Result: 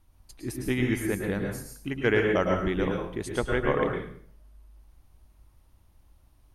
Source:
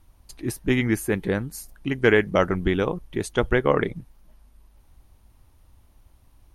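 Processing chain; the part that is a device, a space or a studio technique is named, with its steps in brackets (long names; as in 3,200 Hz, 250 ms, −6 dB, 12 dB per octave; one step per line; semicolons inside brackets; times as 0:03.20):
bathroom (convolution reverb RT60 0.55 s, pre-delay 100 ms, DRR 1.5 dB)
level −6.5 dB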